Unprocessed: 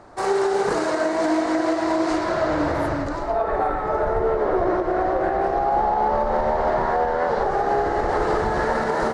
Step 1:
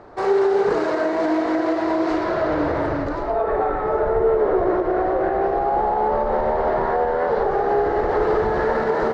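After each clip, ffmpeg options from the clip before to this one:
ffmpeg -i in.wav -filter_complex "[0:a]lowpass=3900,equalizer=frequency=430:width=3.1:gain=6.5,asplit=2[link_01][link_02];[link_02]alimiter=limit=-17.5dB:level=0:latency=1,volume=-3dB[link_03];[link_01][link_03]amix=inputs=2:normalize=0,volume=-3.5dB" out.wav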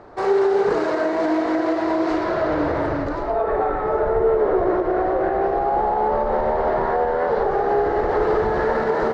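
ffmpeg -i in.wav -af anull out.wav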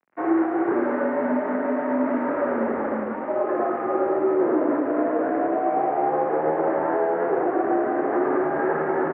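ffmpeg -i in.wav -af "aeval=exprs='sgn(val(0))*max(abs(val(0))-0.015,0)':channel_layout=same,aecho=1:1:106:0.473,highpass=frequency=250:width_type=q:width=0.5412,highpass=frequency=250:width_type=q:width=1.307,lowpass=frequency=2200:width_type=q:width=0.5176,lowpass=frequency=2200:width_type=q:width=0.7071,lowpass=frequency=2200:width_type=q:width=1.932,afreqshift=-66,volume=-2dB" out.wav

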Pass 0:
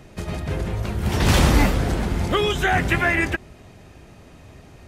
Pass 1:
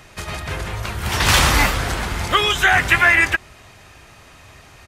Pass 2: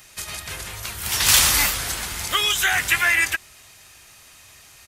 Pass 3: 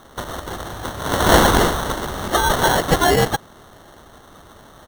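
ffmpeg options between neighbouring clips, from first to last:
ffmpeg -i in.wav -af "firequalizer=gain_entry='entry(120,0);entry(180,-5);entry(1100,10)':delay=0.05:min_phase=1,volume=-2dB" out.wav
ffmpeg -i in.wav -af "crystalizer=i=7:c=0,volume=-12dB" out.wav
ffmpeg -i in.wav -af "acrusher=samples=18:mix=1:aa=0.000001,volume=3.5dB" out.wav

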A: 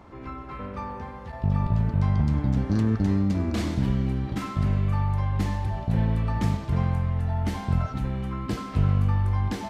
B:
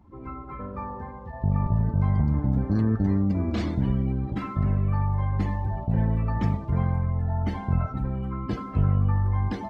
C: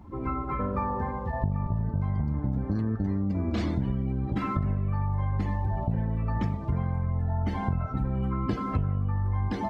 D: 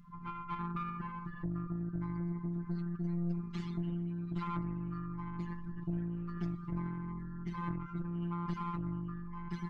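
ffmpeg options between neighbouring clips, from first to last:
ffmpeg -i in.wav -af "afftdn=noise_reduction=19:noise_floor=-41" out.wav
ffmpeg -i in.wav -af "acompressor=threshold=-31dB:ratio=12,volume=7.5dB" out.wav
ffmpeg -i in.wav -af "afftfilt=real='hypot(re,im)*cos(PI*b)':imag='0':win_size=1024:overlap=0.75,afftfilt=real='re*(1-between(b*sr/4096,250,1000))':imag='im*(1-between(b*sr/4096,250,1000))':win_size=4096:overlap=0.75,aeval=exprs='(tanh(31.6*val(0)+0.65)-tanh(0.65))/31.6':channel_layout=same,volume=1dB" out.wav

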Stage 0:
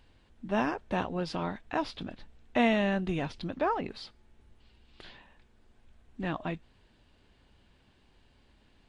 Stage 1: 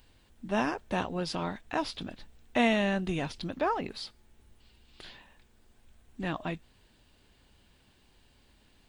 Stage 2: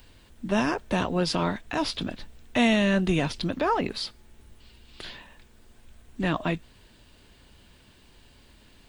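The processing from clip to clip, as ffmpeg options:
ffmpeg -i in.wav -af "aemphasis=mode=production:type=50fm" out.wav
ffmpeg -i in.wav -filter_complex "[0:a]bandreject=frequency=790:width=13,acrossover=split=230|3100[link_01][link_02][link_03];[link_02]alimiter=level_in=0.5dB:limit=-24dB:level=0:latency=1:release=16,volume=-0.5dB[link_04];[link_01][link_04][link_03]amix=inputs=3:normalize=0,volume=8dB" out.wav

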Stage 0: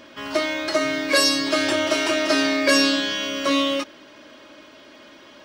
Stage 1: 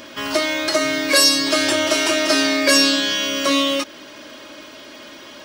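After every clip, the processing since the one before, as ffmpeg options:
ffmpeg -i in.wav -filter_complex "[0:a]highshelf=frequency=5500:gain=10.5,asplit=2[link_01][link_02];[link_02]acompressor=threshold=-28dB:ratio=6,volume=2dB[link_03];[link_01][link_03]amix=inputs=2:normalize=0,volume=-1dB" out.wav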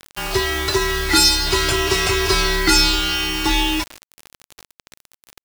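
ffmpeg -i in.wav -filter_complex "[0:a]asplit=2[link_01][link_02];[link_02]adelay=157.4,volume=-20dB,highshelf=frequency=4000:gain=-3.54[link_03];[link_01][link_03]amix=inputs=2:normalize=0,afreqshift=-240,acrusher=bits=4:mix=0:aa=0.000001" out.wav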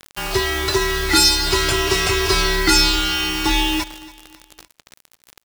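ffmpeg -i in.wav -af "aecho=1:1:281|562|843:0.112|0.0415|0.0154" out.wav

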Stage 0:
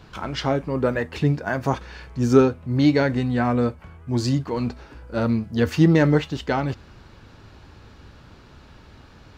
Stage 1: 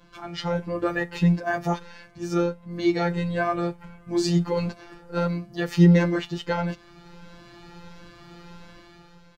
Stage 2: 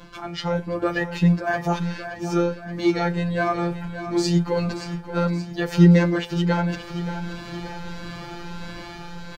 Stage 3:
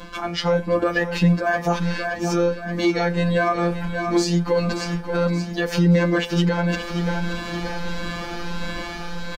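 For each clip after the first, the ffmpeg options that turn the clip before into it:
ffmpeg -i in.wav -filter_complex "[0:a]dynaudnorm=framelen=110:gausssize=11:maxgain=9.5dB,afftfilt=real='hypot(re,im)*cos(PI*b)':imag='0':win_size=1024:overlap=0.75,asplit=2[link_01][link_02];[link_02]adelay=7.3,afreqshift=1.5[link_03];[link_01][link_03]amix=inputs=2:normalize=1" out.wav
ffmpeg -i in.wav -af "areverse,acompressor=mode=upward:threshold=-27dB:ratio=2.5,areverse,aecho=1:1:576|1152|1728|2304|2880|3456:0.282|0.149|0.0792|0.042|0.0222|0.0118,volume=2dB" out.wav
ffmpeg -i in.wav -af "equalizer=frequency=140:width=6.6:gain=-12.5,aecho=1:1:4:0.37,alimiter=limit=-16.5dB:level=0:latency=1:release=239,volume=6.5dB" out.wav

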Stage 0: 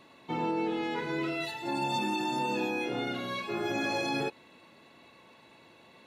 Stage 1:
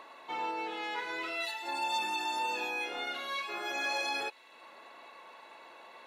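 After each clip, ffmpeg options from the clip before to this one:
ffmpeg -i in.wav -filter_complex "[0:a]highpass=770,acrossover=split=1600[link_01][link_02];[link_01]acompressor=mode=upward:threshold=-44dB:ratio=2.5[link_03];[link_03][link_02]amix=inputs=2:normalize=0,volume=1dB" out.wav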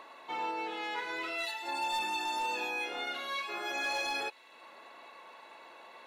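ffmpeg -i in.wav -af "volume=28dB,asoftclip=hard,volume=-28dB" out.wav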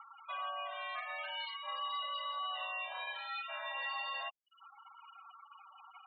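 ffmpeg -i in.wav -af "acompressor=threshold=-45dB:ratio=1.5,highpass=frequency=270:width_type=q:width=0.5412,highpass=frequency=270:width_type=q:width=1.307,lowpass=frequency=3600:width_type=q:width=0.5176,lowpass=frequency=3600:width_type=q:width=0.7071,lowpass=frequency=3600:width_type=q:width=1.932,afreqshift=250,afftfilt=real='re*gte(hypot(re,im),0.00794)':imag='im*gte(hypot(re,im),0.00794)':win_size=1024:overlap=0.75" out.wav

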